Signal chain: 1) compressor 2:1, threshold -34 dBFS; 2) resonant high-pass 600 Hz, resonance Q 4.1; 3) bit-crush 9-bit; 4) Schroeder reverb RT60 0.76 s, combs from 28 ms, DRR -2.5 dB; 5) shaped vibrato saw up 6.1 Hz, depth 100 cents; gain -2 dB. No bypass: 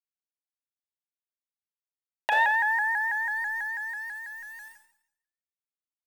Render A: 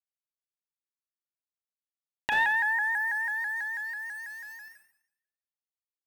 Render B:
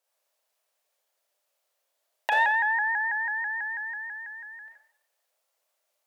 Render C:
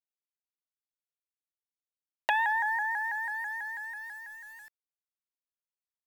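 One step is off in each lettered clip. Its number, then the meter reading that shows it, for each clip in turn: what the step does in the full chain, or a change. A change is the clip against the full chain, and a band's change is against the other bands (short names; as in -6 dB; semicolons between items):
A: 2, 500 Hz band -8.0 dB; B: 3, distortion -29 dB; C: 4, crest factor change +4.5 dB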